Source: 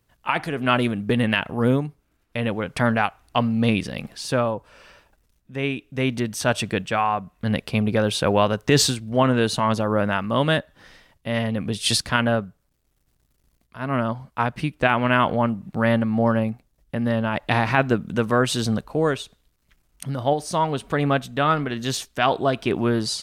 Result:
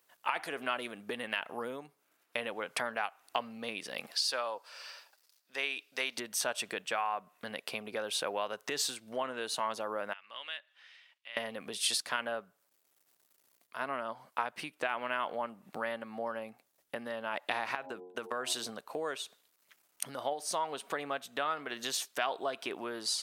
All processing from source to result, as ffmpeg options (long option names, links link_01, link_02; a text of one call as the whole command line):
ffmpeg -i in.wav -filter_complex "[0:a]asettb=1/sr,asplit=3[link_01][link_02][link_03];[link_01]atrim=end=4.114[link_04];[link_02]atrim=start=4.11:end=6.18,asetpts=PTS-STARTPTS,afade=type=in:duration=0.004:curve=qsin,afade=type=out:start_time=2.066:duration=0.004:curve=qsin,highpass=frequency=870:poles=1,equalizer=frequency=4700:width=2.6:gain=11[link_05];[link_03]atrim=start=6.176[link_06];[link_04][link_05]acrossfade=duration=0.004:curve1=hsin:curve2=qsin[link_07];[link_07][link_06]acrossfade=duration=0.004:curve1=qsin:curve2=hsin,asettb=1/sr,asplit=3[link_08][link_09][link_10];[link_08]atrim=end=10.134[link_11];[link_09]atrim=start=10.13:end=11.37,asetpts=PTS-STARTPTS,afade=type=in:duration=0.004:curve=qsin,afade=type=out:start_time=1.236:duration=0.004:curve=qsin,bandpass=frequency=2700:width_type=q:width=2.1,acompressor=threshold=-57dB:ratio=1.5:attack=3.2:release=140:knee=1:detection=peak[link_12];[link_10]atrim=start=11.366[link_13];[link_11][link_12]acrossfade=duration=0.004:curve1=hsin:curve2=qsin[link_14];[link_14][link_13]acrossfade=duration=0.004:curve1=qsin:curve2=hsin,asettb=1/sr,asplit=3[link_15][link_16][link_17];[link_15]atrim=end=17.754[link_18];[link_16]atrim=start=17.75:end=18.69,asetpts=PTS-STARTPTS,afade=type=in:duration=0.004:curve=qsin,afade=type=out:start_time=0.936:duration=0.004:curve=qsin,agate=range=-30dB:threshold=-26dB:ratio=16:release=100:detection=peak,bandreject=frequency=90.62:width_type=h:width=4,bandreject=frequency=181.24:width_type=h:width=4,bandreject=frequency=271.86:width_type=h:width=4,bandreject=frequency=362.48:width_type=h:width=4,bandreject=frequency=453.1:width_type=h:width=4,bandreject=frequency=543.72:width_type=h:width=4,bandreject=frequency=634.34:width_type=h:width=4,bandreject=frequency=724.96:width_type=h:width=4,bandreject=frequency=815.58:width_type=h:width=4,bandreject=frequency=906.2:width_type=h:width=4,bandreject=frequency=996.82:width_type=h:width=4,acompressor=threshold=-24dB:ratio=5:attack=3.2:release=140:knee=1:detection=peak[link_19];[link_17]atrim=start=18.686[link_20];[link_18][link_19]acrossfade=duration=0.004:curve1=hsin:curve2=qsin[link_21];[link_21][link_20]acrossfade=duration=0.004:curve1=qsin:curve2=hsin,highshelf=frequency=10000:gain=7,acompressor=threshold=-29dB:ratio=6,highpass=520" out.wav